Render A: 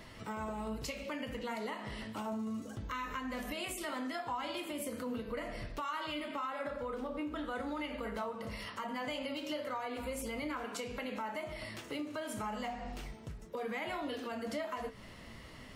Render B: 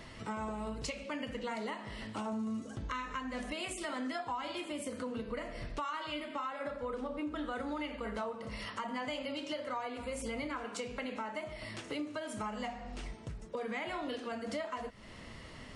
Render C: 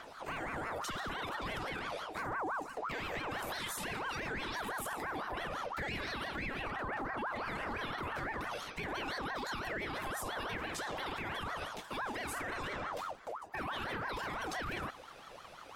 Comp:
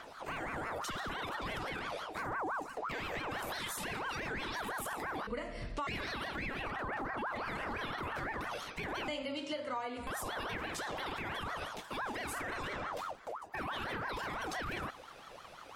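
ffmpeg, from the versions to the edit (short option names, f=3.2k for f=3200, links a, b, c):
-filter_complex "[1:a]asplit=2[a][b];[2:a]asplit=3[c][d][e];[c]atrim=end=5.272[f];[a]atrim=start=5.268:end=5.872[g];[d]atrim=start=5.868:end=9.082[h];[b]atrim=start=9.078:end=10.072[i];[e]atrim=start=10.068[j];[f][g]acrossfade=d=0.004:c1=hsin:c2=hsin[k];[k][h]acrossfade=d=0.004:c1=hsin:c2=hsin[l];[l][i]acrossfade=d=0.004:c1=hsin:c2=hsin[m];[m][j]acrossfade=d=0.004:c1=hsin:c2=hsin"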